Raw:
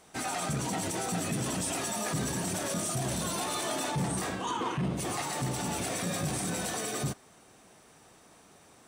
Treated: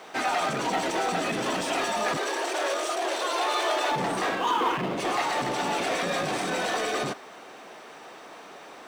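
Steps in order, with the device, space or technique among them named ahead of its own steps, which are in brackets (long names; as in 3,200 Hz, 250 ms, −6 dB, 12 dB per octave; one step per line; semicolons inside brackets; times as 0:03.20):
phone line with mismatched companding (band-pass filter 380–3,600 Hz; mu-law and A-law mismatch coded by mu)
0:02.17–0:03.91: Butterworth high-pass 320 Hz 48 dB per octave
level +7.5 dB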